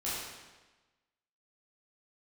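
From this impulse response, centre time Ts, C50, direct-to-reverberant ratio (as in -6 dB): 94 ms, -2.0 dB, -10.0 dB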